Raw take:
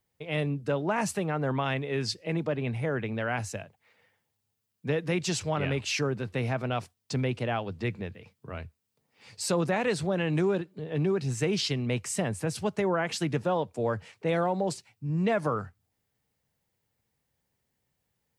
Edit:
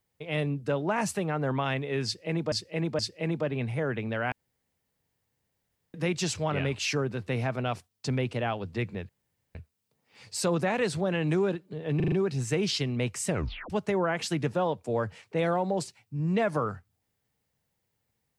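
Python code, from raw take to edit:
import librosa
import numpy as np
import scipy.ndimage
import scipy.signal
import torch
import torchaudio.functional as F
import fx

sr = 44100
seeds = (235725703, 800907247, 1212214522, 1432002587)

y = fx.edit(x, sr, fx.repeat(start_s=2.05, length_s=0.47, count=3),
    fx.room_tone_fill(start_s=3.38, length_s=1.62),
    fx.room_tone_fill(start_s=8.15, length_s=0.46),
    fx.stutter(start_s=11.02, slice_s=0.04, count=5),
    fx.tape_stop(start_s=12.18, length_s=0.42), tone=tone)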